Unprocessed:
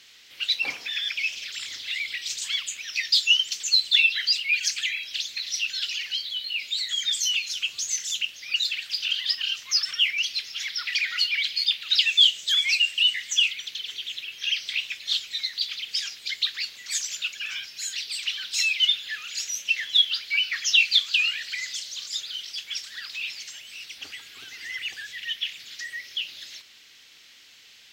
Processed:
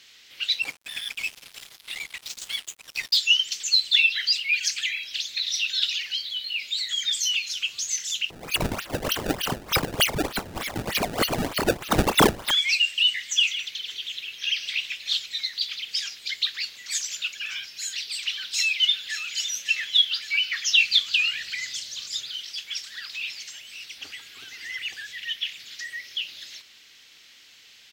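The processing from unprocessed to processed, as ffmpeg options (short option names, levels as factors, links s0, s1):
-filter_complex "[0:a]asettb=1/sr,asplit=3[s0][s1][s2];[s0]atrim=end=0.624[s3];[s1]atrim=start=0.62:end=3.17,asetpts=PTS-STARTPTS,afade=t=in:d=0.004:c=qsin,afade=t=out:st=2.546:d=0.004:c=qsin,aeval=exprs='sgn(val(0))*max(abs(val(0))-0.0211,0)':c=same[s4];[s2]atrim=start=3.166[s5];[s3][s4]acrossfade=d=0.004:c1=hsin:c2=qsin[s6];[s6][s5]acrossfade=d=0.004:c1=qsin:c2=hsin,asettb=1/sr,asplit=3[s7][s8][s9];[s7]atrim=end=5.334[s10];[s8]atrim=start=5.33:end=6,asetpts=PTS-STARTPTS,afade=t=in:d=0.004:c=qsin,afade=t=out:st=0.666:d=0.004:c=qsin,equalizer=f=3700:w=7.7:g=12[s11];[s9]atrim=start=5.996[s12];[s10][s11]acrossfade=d=0.004:c1=hsin:c2=qsin[s13];[s13][s12]acrossfade=d=0.004:c1=qsin:c2=hsin,asettb=1/sr,asplit=3[s14][s15][s16];[s14]atrim=end=8.304[s17];[s15]atrim=start=8.3:end=12.51,asetpts=PTS-STARTPTS,afade=t=in:d=0.004:c=qsin,afade=t=out:st=4.206:d=0.004:c=qsin,acrusher=samples=24:mix=1:aa=0.000001:lfo=1:lforange=38.4:lforate=3.3[s18];[s16]atrim=start=12.506[s19];[s17][s18]acrossfade=d=0.004:c1=hsin:c2=qsin[s20];[s20][s19]acrossfade=d=0.004:c1=qsin:c2=hsin,asettb=1/sr,asplit=3[s21][s22][s23];[s21]atrim=end=13.244[s24];[s22]atrim=start=13.24:end=15.26,asetpts=PTS-STARTPTS,afade=t=in:d=0.004:c=qsin,afade=t=out:st=2.016:d=0.004:c=qsin,aecho=1:1:158:0.266,atrim=end_sample=89082[s25];[s23]atrim=start=15.256[s26];[s24][s25]acrossfade=d=0.004:c1=hsin:c2=qsin[s27];[s27][s26]acrossfade=d=0.004:c1=qsin:c2=hsin,asplit=2[s28][s29];[s29]afade=t=in:st=18.31:d=0.01,afade=t=out:st=19.33:d=0.01,aecho=0:1:560|1120|1680|2240|2800|3360|3920:0.298538|0.179123|0.107474|0.0644843|0.0386906|0.0232143|0.0139286[s30];[s28][s30]amix=inputs=2:normalize=0,asettb=1/sr,asplit=3[s31][s32][s33];[s31]atrim=end=20.824[s34];[s32]atrim=start=20.82:end=22.29,asetpts=PTS-STARTPTS,afade=t=in:d=0.004:c=qsin,afade=t=out:st=1.466:d=0.004:c=qsin,lowshelf=f=220:g=10.5[s35];[s33]atrim=start=22.286[s36];[s34][s35]acrossfade=d=0.004:c1=hsin:c2=qsin[s37];[s37][s36]acrossfade=d=0.004:c1=qsin:c2=hsin"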